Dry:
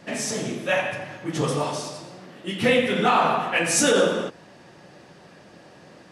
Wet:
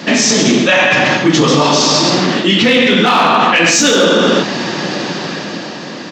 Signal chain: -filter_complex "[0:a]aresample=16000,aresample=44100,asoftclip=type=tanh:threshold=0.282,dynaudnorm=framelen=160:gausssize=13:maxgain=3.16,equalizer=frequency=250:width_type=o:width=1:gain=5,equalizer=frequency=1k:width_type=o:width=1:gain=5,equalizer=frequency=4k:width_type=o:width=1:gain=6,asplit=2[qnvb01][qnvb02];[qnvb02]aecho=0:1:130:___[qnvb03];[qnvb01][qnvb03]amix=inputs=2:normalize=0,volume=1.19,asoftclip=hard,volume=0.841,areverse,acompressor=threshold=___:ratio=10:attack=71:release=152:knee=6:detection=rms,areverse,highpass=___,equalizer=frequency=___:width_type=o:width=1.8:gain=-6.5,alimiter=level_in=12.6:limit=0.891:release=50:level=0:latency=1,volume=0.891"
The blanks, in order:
0.316, 0.0794, 190, 760